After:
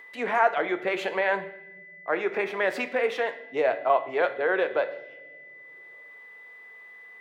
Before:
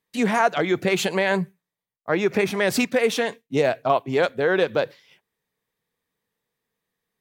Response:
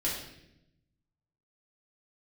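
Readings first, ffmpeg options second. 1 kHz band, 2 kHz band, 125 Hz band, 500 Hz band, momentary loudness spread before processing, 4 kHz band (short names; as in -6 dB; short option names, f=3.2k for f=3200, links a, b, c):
-1.5 dB, -2.5 dB, under -15 dB, -4.0 dB, 6 LU, -10.0 dB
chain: -filter_complex "[0:a]asplit=2[a][b];[1:a]atrim=start_sample=2205[c];[b][c]afir=irnorm=-1:irlink=0,volume=-13dB[d];[a][d]amix=inputs=2:normalize=0,acompressor=mode=upward:threshold=-30dB:ratio=2.5,acrossover=split=400 2700:gain=0.0794 1 0.1[e][f][g];[e][f][g]amix=inputs=3:normalize=0,aeval=exprs='val(0)+0.00794*sin(2*PI*2000*n/s)':c=same,volume=-3dB"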